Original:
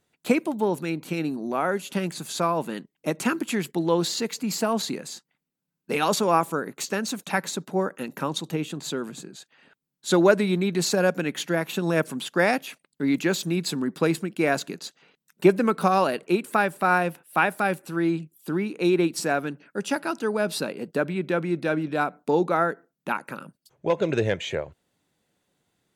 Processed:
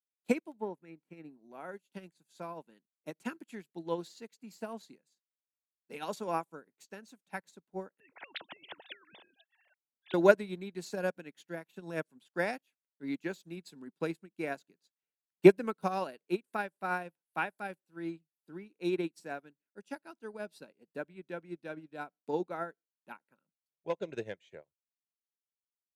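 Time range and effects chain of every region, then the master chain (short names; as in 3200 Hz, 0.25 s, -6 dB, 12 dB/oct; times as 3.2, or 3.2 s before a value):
0.57–1.4 resonant high shelf 2600 Hz -8 dB, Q 1.5 + notch 1500 Hz, Q 11
8–10.14 sine-wave speech + spectral compressor 10:1
whole clip: HPF 130 Hz; notch 1200 Hz, Q 8.3; upward expander 2.5:1, over -40 dBFS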